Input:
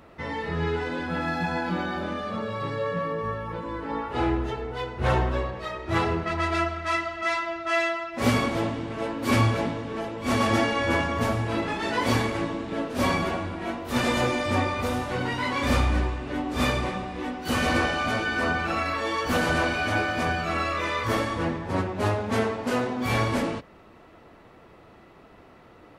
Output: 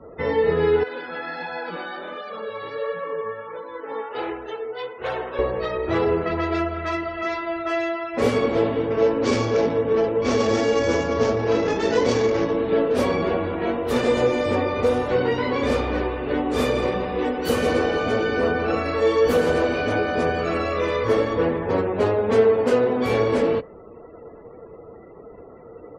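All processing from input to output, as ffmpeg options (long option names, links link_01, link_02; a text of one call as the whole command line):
ffmpeg -i in.wav -filter_complex "[0:a]asettb=1/sr,asplit=3[link_01][link_02][link_03];[link_01]atrim=end=0.834[link_04];[link_02]atrim=start=0.83:end=5.39,asetpts=PTS-STARTPTS,afade=type=in:duration=0.004:curve=qsin,afade=type=out:start_time=4.556:duration=0.004:curve=qsin,highpass=frequency=1100:poles=1,flanger=delay=1.2:depth=8.3:regen=56:speed=1.4:shape=sinusoidal[link_05];[link_03]atrim=start=5.386[link_06];[link_04][link_05]acrossfade=duration=0.004:curve1=hsin:curve2=qsin[link_07];[link_07][link_06]acrossfade=duration=0.004:curve1=qsin:curve2=hsin,asettb=1/sr,asplit=3[link_08][link_09][link_10];[link_08]atrim=end=8.854[link_11];[link_09]atrim=start=8.85:end=12.57,asetpts=PTS-STARTPTS,afade=type=in:duration=0.004:curve=qsin,afade=type=out:start_time=3.716:duration=0.004:curve=qsin,adynamicsmooth=sensitivity=3.5:basefreq=1800,equalizer=frequency=5900:width=1.1:gain=14.5[link_12];[link_10]atrim=start=12.566[link_13];[link_11][link_12]acrossfade=duration=0.004:curve1=hsin:curve2=qsin[link_14];[link_14][link_13]acrossfade=duration=0.004:curve1=qsin:curve2=hsin,asettb=1/sr,asplit=3[link_15][link_16][link_17];[link_15]atrim=end=16.474[link_18];[link_16]atrim=start=16.47:end=20.97,asetpts=PTS-STARTPTS,afade=type=in:duration=0.004:curve=qsin,afade=type=out:start_time=4.496:duration=0.004:curve=qsin,highshelf=frequency=7800:gain=6,aecho=1:1:167:0.299,atrim=end_sample=198450[link_19];[link_17]atrim=start=20.966[link_20];[link_18][link_19]acrossfade=duration=0.004:curve1=hsin:curve2=qsin[link_21];[link_21][link_20]acrossfade=duration=0.004:curve1=qsin:curve2=hsin,acrossover=split=230|580[link_22][link_23][link_24];[link_22]acompressor=threshold=-37dB:ratio=4[link_25];[link_23]acompressor=threshold=-31dB:ratio=4[link_26];[link_24]acompressor=threshold=-34dB:ratio=4[link_27];[link_25][link_26][link_27]amix=inputs=3:normalize=0,afftdn=noise_reduction=34:noise_floor=-51,equalizer=frequency=460:width_type=o:width=0.38:gain=13.5,volume=5.5dB" out.wav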